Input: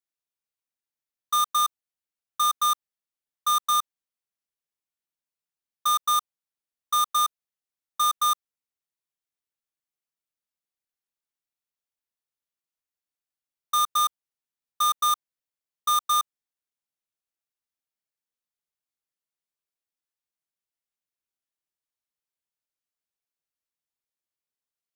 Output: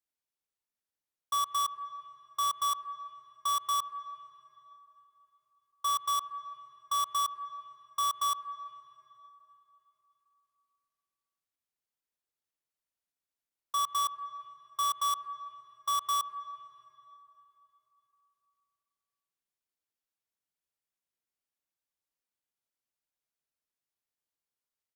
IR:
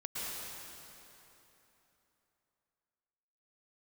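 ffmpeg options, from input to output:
-filter_complex "[0:a]alimiter=level_in=1.33:limit=0.0631:level=0:latency=1,volume=0.75,asplit=2[s0][s1];[1:a]atrim=start_sample=2205,lowpass=2200[s2];[s1][s2]afir=irnorm=-1:irlink=0,volume=0.251[s3];[s0][s3]amix=inputs=2:normalize=0,asetrate=41625,aresample=44100,atempo=1.05946,volume=0.794"

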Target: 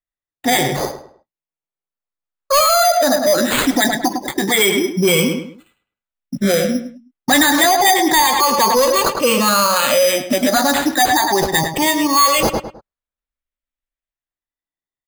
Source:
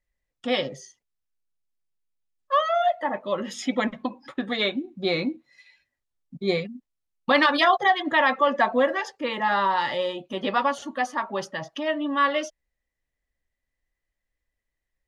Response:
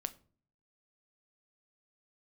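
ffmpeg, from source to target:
-filter_complex "[0:a]afftfilt=real='re*pow(10,18/40*sin(2*PI*(0.8*log(max(b,1)*sr/1024/100)/log(2)-(0.28)*(pts-256)/sr)))':imag='im*pow(10,18/40*sin(2*PI*(0.8*log(max(b,1)*sr/1024/100)/log(2)-(0.28)*(pts-256)/sr)))':win_size=1024:overlap=0.75,agate=range=0.0224:threshold=0.00794:ratio=3:detection=peak,highshelf=f=5000:t=q:w=3:g=6.5,bandreject=f=2500:w=20,acrusher=samples=8:mix=1:aa=0.000001,asoftclip=type=tanh:threshold=0.282,asplit=2[s0][s1];[s1]adelay=104,lowpass=f=3400:p=1,volume=0.299,asplit=2[s2][s3];[s3]adelay=104,lowpass=f=3400:p=1,volume=0.32,asplit=2[s4][s5];[s5]adelay=104,lowpass=f=3400:p=1,volume=0.32[s6];[s0][s2][s4][s6]amix=inputs=4:normalize=0,alimiter=level_in=11.9:limit=0.891:release=50:level=0:latency=1,adynamicequalizer=threshold=0.0794:dfrequency=3100:dqfactor=0.7:tfrequency=3100:tqfactor=0.7:attack=5:release=100:ratio=0.375:range=2.5:mode=boostabove:tftype=highshelf,volume=0.447"

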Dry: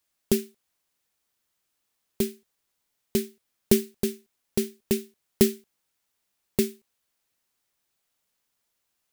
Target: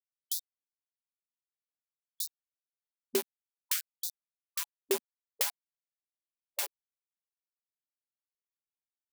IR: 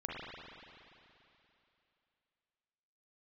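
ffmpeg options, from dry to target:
-af "aeval=exprs='val(0)+0.5*0.0944*sgn(val(0))':c=same,bandreject=f=306.9:t=h:w=4,bandreject=f=613.8:t=h:w=4,aeval=exprs='val(0)*gte(abs(val(0)),0.1)':c=same,afftfilt=real='re*gte(b*sr/1024,220*pow(3700/220,0.5+0.5*sin(2*PI*0.54*pts/sr)))':imag='im*gte(b*sr/1024,220*pow(3700/220,0.5+0.5*sin(2*PI*0.54*pts/sr)))':win_size=1024:overlap=0.75,volume=0.562"

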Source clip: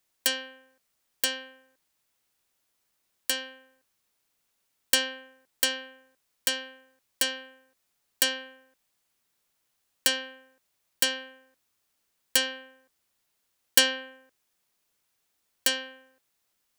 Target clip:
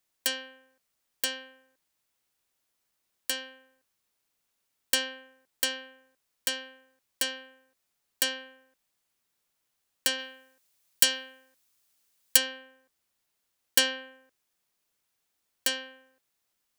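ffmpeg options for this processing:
-filter_complex "[0:a]asplit=3[s0][s1][s2];[s0]afade=t=out:st=10.18:d=0.02[s3];[s1]highshelf=f=2900:g=8.5,afade=t=in:st=10.18:d=0.02,afade=t=out:st=12.36:d=0.02[s4];[s2]afade=t=in:st=12.36:d=0.02[s5];[s3][s4][s5]amix=inputs=3:normalize=0,volume=0.708"

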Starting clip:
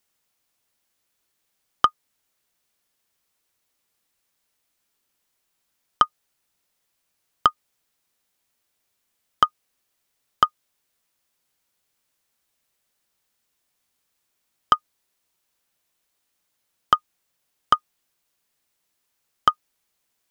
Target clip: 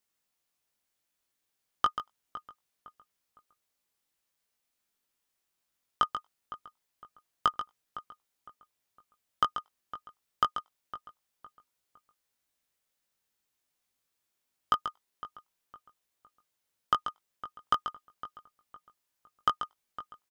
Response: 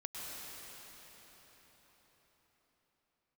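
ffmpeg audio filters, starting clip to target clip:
-filter_complex "[0:a]asplit=2[s0][s1];[s1]adelay=19,volume=0.562[s2];[s0][s2]amix=inputs=2:normalize=0,asplit=2[s3][s4];[s4]adelay=509,lowpass=f=1900:p=1,volume=0.2,asplit=2[s5][s6];[s6]adelay=509,lowpass=f=1900:p=1,volume=0.36,asplit=2[s7][s8];[s8]adelay=509,lowpass=f=1900:p=1,volume=0.36[s9];[s3][s5][s7][s9]amix=inputs=4:normalize=0,asplit=2[s10][s11];[1:a]atrim=start_sample=2205,afade=t=out:st=0.14:d=0.01,atrim=end_sample=6615,adelay=136[s12];[s11][s12]afir=irnorm=-1:irlink=0,volume=0.596[s13];[s10][s13]amix=inputs=2:normalize=0,volume=0.355"

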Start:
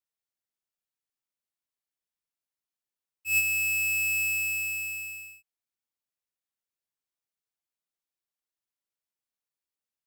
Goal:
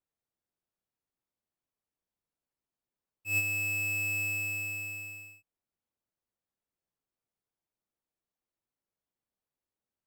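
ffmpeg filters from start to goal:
-af "tiltshelf=f=1400:g=8.5"

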